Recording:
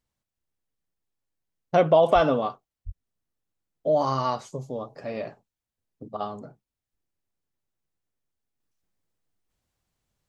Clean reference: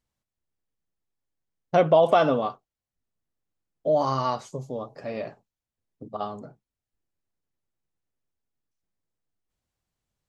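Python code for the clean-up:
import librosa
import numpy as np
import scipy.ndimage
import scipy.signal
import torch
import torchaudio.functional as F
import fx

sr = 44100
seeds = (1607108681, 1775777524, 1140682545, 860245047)

y = fx.fix_deplosive(x, sr, at_s=(2.14, 2.85))
y = fx.fix_level(y, sr, at_s=8.6, step_db=-4.5)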